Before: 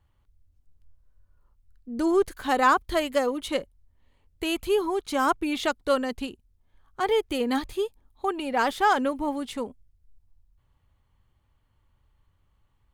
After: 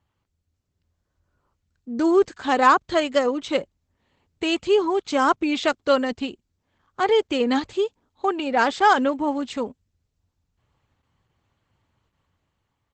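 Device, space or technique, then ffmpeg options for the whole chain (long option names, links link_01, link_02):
video call: -af "highpass=110,dynaudnorm=framelen=150:gausssize=11:maxgain=5dB" -ar 48000 -c:a libopus -b:a 12k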